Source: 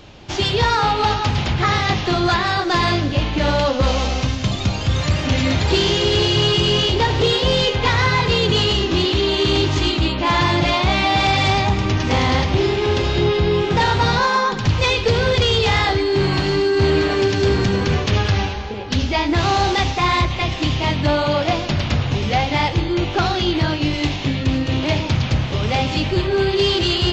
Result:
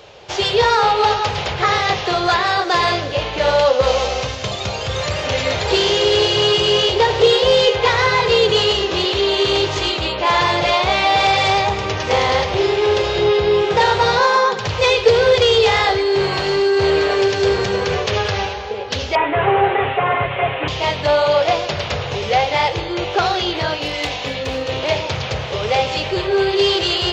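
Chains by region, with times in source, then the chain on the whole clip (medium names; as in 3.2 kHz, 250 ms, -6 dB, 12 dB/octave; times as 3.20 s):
19.15–20.68 s: one-bit delta coder 16 kbps, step -26 dBFS + comb 7.2 ms, depth 94%
23.74–24.71 s: peaking EQ 380 Hz -4.5 dB 0.3 oct + comb 4 ms, depth 43% + hard clipper -12.5 dBFS
whole clip: high-pass 54 Hz; resonant low shelf 360 Hz -8 dB, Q 3; trim +1.5 dB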